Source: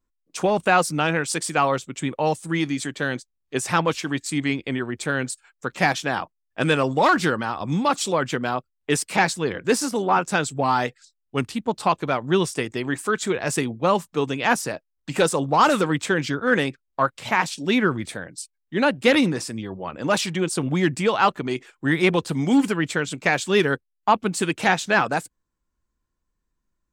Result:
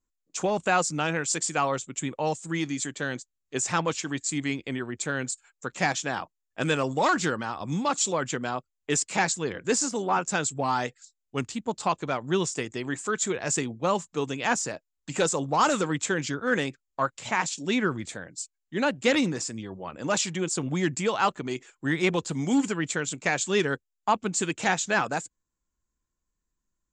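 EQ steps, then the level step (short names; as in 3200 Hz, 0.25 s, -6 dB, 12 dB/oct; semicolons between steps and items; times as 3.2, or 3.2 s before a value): synth low-pass 7200 Hz, resonance Q 7.3; air absorption 53 m; -5.5 dB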